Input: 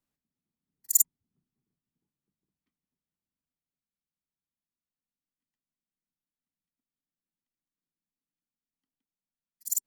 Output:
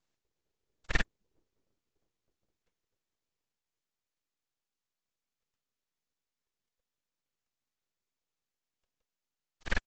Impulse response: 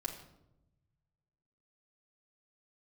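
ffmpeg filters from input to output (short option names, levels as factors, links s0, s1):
-af "alimiter=limit=0.141:level=0:latency=1:release=14,aresample=16000,aeval=exprs='abs(val(0))':c=same,aresample=44100,volume=2.24"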